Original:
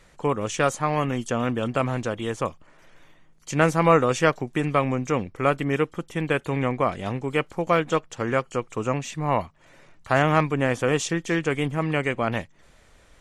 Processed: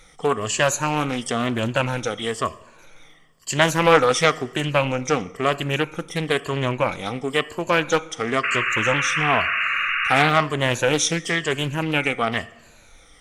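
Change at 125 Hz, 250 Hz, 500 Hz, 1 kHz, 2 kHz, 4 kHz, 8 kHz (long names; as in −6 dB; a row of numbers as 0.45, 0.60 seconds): 0.0, −0.5, +1.5, +3.0, +7.5, +11.0, +8.5 decibels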